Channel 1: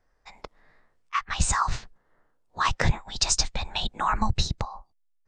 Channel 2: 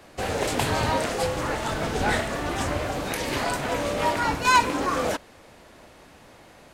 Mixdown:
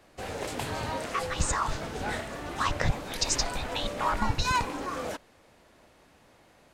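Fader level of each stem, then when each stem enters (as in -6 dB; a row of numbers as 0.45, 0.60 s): -4.5, -9.0 dB; 0.00, 0.00 s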